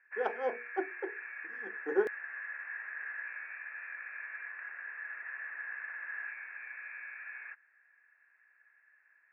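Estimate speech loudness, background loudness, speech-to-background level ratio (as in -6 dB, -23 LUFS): -36.5 LUFS, -41.5 LUFS, 5.0 dB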